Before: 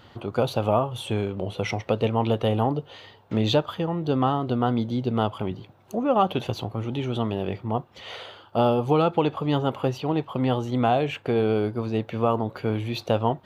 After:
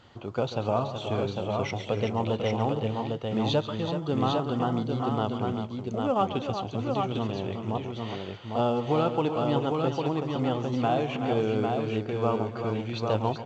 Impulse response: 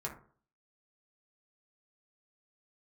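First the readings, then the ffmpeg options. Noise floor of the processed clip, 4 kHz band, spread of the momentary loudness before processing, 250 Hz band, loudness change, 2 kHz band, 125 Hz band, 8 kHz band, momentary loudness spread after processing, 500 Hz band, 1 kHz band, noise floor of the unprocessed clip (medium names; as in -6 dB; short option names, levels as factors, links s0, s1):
-39 dBFS, -3.0 dB, 8 LU, -3.0 dB, -3.5 dB, -3.0 dB, -3.5 dB, no reading, 5 LU, -3.0 dB, -3.0 dB, -52 dBFS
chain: -filter_complex "[0:a]asplit=2[s0][s1];[s1]aecho=0:1:138|294|377|802:0.224|0.141|0.376|0.631[s2];[s0][s2]amix=inputs=2:normalize=0,volume=0.562" -ar 16000 -c:a pcm_alaw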